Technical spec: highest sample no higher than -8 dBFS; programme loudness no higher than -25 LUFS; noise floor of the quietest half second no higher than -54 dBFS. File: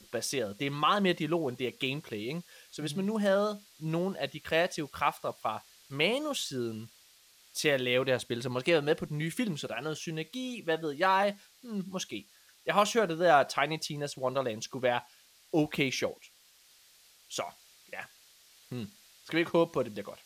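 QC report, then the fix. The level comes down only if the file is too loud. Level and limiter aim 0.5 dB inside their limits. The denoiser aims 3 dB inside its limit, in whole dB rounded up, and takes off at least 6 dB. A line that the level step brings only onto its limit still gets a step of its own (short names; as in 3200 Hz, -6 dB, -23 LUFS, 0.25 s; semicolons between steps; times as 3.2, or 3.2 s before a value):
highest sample -10.5 dBFS: OK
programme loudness -31.0 LUFS: OK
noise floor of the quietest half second -61 dBFS: OK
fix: none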